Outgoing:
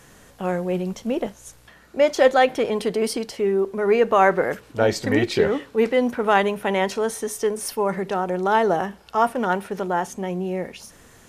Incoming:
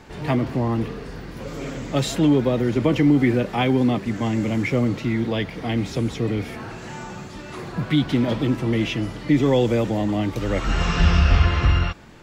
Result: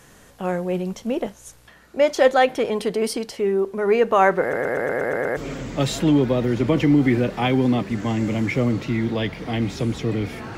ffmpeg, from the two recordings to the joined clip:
-filter_complex "[0:a]apad=whole_dur=10.57,atrim=end=10.57,asplit=8[s0][s1][s2][s3][s4][s5][s6][s7];[s0]atrim=end=4.532[s8];[s1]atrim=start=4.408:end=4.532[s9];[s2]atrim=start=4.408:end=4.532[s10];[s3]atrim=start=4.408:end=4.532[s11];[s4]atrim=start=4.408:end=4.532[s12];[s5]atrim=start=4.408:end=4.532[s13];[s6]atrim=start=4.408:end=4.532[s14];[s7]atrim=start=4.408:end=4.532[s15];[1:a]atrim=start=1.528:end=6.73[s16];[s8][s9]acrossfade=d=0.004:c1=hsin:c2=hsin[s17];[s17][s10]acrossfade=d=0.004:c1=hsin:c2=hsin[s18];[s18][s11]acrossfade=d=0.004:c1=hsin:c2=hsin[s19];[s19][s12]acrossfade=d=0.004:c1=hsin:c2=hsin[s20];[s20][s13]acrossfade=d=0.004:c1=hsin:c2=hsin[s21];[s21][s14]acrossfade=d=0.004:c1=hsin:c2=hsin[s22];[s22][s15]acrossfade=d=0.004:c1=hsin:c2=hsin[s23];[s23][s16]acrossfade=d=0.004:c1=hsin:c2=hsin"

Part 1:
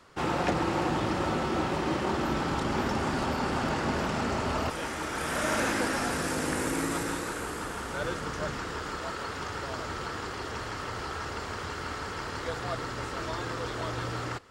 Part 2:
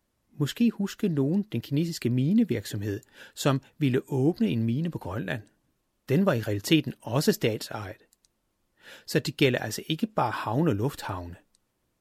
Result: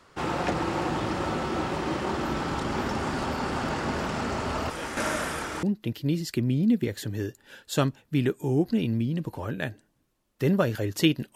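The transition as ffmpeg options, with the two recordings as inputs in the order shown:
-filter_complex "[0:a]apad=whole_dur=11.35,atrim=end=11.35,asplit=2[s0][s1];[s0]atrim=end=4.972[s2];[s1]atrim=start=4.968:end=5.632,asetpts=PTS-STARTPTS,areverse[s3];[1:a]atrim=start=1.308:end=7.03[s4];[s2][s3]acrossfade=d=0.004:c1=hsin:c2=hsin[s5];[s5][s4]acrossfade=d=0.004:c1=hsin:c2=hsin"

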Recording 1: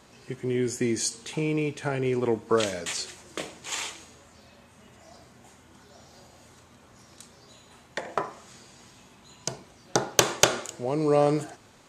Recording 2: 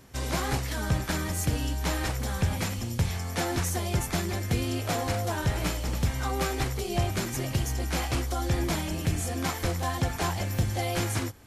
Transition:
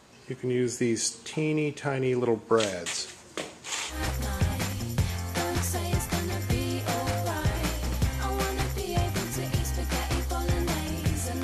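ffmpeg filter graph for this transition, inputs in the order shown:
-filter_complex "[0:a]apad=whole_dur=11.43,atrim=end=11.43,atrim=end=4.02,asetpts=PTS-STARTPTS[s0];[1:a]atrim=start=1.89:end=9.44,asetpts=PTS-STARTPTS[s1];[s0][s1]acrossfade=d=0.14:c1=tri:c2=tri"

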